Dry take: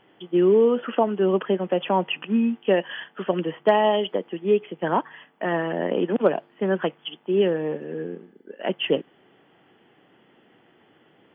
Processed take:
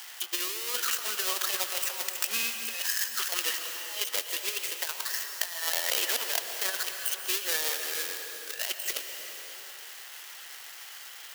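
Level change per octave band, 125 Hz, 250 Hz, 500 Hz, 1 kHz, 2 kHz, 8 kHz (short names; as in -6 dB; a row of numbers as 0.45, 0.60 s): under -35 dB, -28.0 dB, -22.0 dB, -13.0 dB, 0.0 dB, n/a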